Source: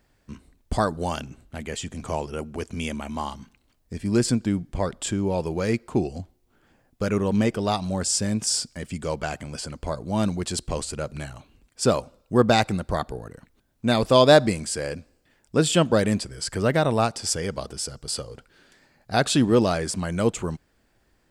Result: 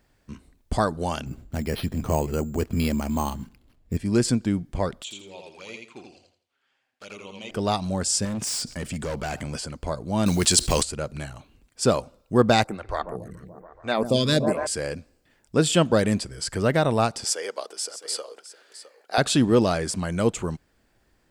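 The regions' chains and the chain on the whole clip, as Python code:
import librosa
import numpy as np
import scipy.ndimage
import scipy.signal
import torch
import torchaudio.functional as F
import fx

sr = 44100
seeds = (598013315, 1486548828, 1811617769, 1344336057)

y = fx.chain(x, sr, fx.lowpass(hz=6000.0, slope=24),
    fx.low_shelf(hz=470.0, db=8.5),
    fx.resample_bad(factor=6, down='none', up='hold'), at=(1.26, 3.97))
y = fx.chain(y, sr, fx.bandpass_q(hz=3000.0, q=1.1),
    fx.env_flanger(rest_ms=8.4, full_db=-37.0),
    fx.echo_feedback(ms=83, feedback_pct=29, wet_db=-3.5), at=(5.02, 7.51))
y = fx.chain(y, sr, fx.clip_hard(threshold_db=-26.5),
    fx.env_flatten(amount_pct=50), at=(8.25, 9.58))
y = fx.chain(y, sr, fx.block_float(bits=7),
    fx.high_shelf(hz=2000.0, db=12.0),
    fx.env_flatten(amount_pct=50), at=(10.26, 10.83))
y = fx.chain(y, sr, fx.echo_bbd(ms=142, stages=2048, feedback_pct=75, wet_db=-11.5),
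    fx.stagger_phaser(hz=1.1), at=(12.64, 14.67))
y = fx.chain(y, sr, fx.highpass(hz=400.0, slope=24),
    fx.echo_single(ms=661, db=-14.5), at=(17.24, 19.18))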